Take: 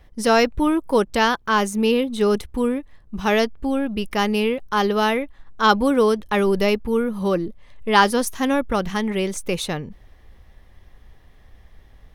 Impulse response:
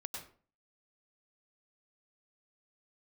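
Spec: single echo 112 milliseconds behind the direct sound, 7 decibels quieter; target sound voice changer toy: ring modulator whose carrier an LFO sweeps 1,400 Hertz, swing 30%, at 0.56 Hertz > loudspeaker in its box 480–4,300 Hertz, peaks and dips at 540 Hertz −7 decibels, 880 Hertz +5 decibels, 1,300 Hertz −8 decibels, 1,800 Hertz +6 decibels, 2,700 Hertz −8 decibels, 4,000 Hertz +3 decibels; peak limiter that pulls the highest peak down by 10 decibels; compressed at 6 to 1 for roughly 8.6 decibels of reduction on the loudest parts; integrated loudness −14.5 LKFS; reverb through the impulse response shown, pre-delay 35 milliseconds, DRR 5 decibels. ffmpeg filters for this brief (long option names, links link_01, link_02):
-filter_complex "[0:a]acompressor=threshold=-20dB:ratio=6,alimiter=limit=-19.5dB:level=0:latency=1,aecho=1:1:112:0.447,asplit=2[link_01][link_02];[1:a]atrim=start_sample=2205,adelay=35[link_03];[link_02][link_03]afir=irnorm=-1:irlink=0,volume=-3.5dB[link_04];[link_01][link_04]amix=inputs=2:normalize=0,aeval=exprs='val(0)*sin(2*PI*1400*n/s+1400*0.3/0.56*sin(2*PI*0.56*n/s))':channel_layout=same,highpass=480,equalizer=frequency=540:width_type=q:width=4:gain=-7,equalizer=frequency=880:width_type=q:width=4:gain=5,equalizer=frequency=1300:width_type=q:width=4:gain=-8,equalizer=frequency=1800:width_type=q:width=4:gain=6,equalizer=frequency=2700:width_type=q:width=4:gain=-8,equalizer=frequency=4000:width_type=q:width=4:gain=3,lowpass=frequency=4300:width=0.5412,lowpass=frequency=4300:width=1.3066,volume=13.5dB"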